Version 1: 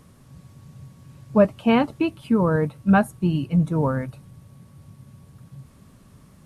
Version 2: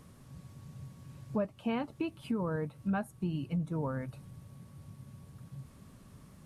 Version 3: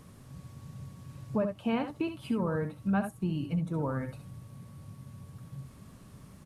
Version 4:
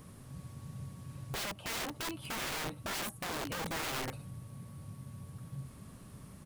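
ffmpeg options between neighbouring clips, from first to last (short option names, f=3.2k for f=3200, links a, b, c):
-af "acompressor=threshold=-31dB:ratio=2.5,volume=-4dB"
-af "aecho=1:1:66|76:0.335|0.237,volume=2.5dB"
-af "aexciter=amount=1.2:drive=6.8:freq=9k,aeval=exprs='(mod(42.2*val(0)+1,2)-1)/42.2':c=same"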